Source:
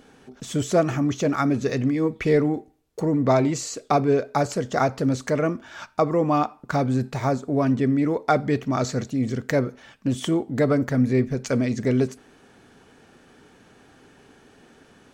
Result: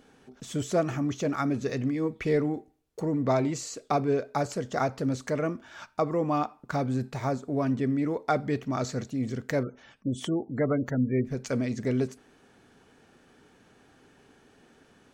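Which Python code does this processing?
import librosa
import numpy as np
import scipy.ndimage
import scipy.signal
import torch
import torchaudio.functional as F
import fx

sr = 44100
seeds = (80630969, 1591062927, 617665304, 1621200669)

y = fx.spec_gate(x, sr, threshold_db=-30, keep='strong', at=(9.63, 11.25))
y = F.gain(torch.from_numpy(y), -6.0).numpy()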